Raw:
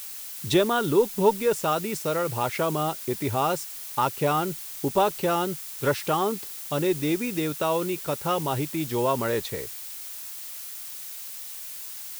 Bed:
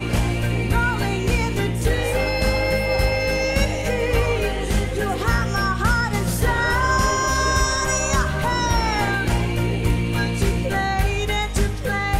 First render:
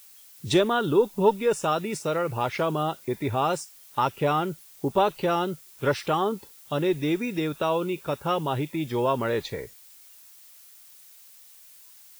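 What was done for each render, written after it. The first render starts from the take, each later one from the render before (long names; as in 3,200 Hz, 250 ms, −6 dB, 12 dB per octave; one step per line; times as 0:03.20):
noise reduction from a noise print 13 dB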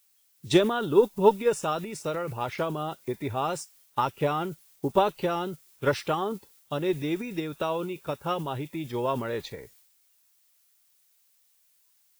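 transient designer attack +3 dB, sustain +7 dB
expander for the loud parts 1.5 to 1, over −43 dBFS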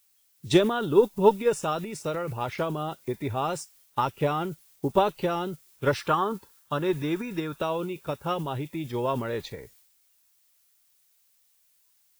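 0:06.00–0:07.56: gain on a spectral selection 870–1,800 Hz +7 dB
low-shelf EQ 150 Hz +4 dB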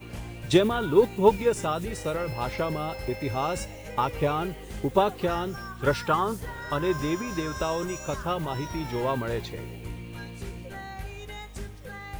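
mix in bed −17.5 dB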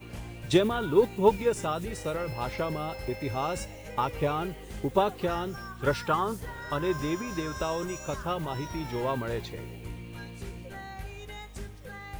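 level −2.5 dB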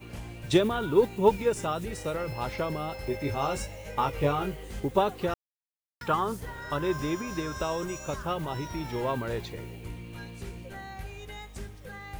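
0:03.08–0:04.80: double-tracking delay 21 ms −5 dB
0:05.34–0:06.01: silence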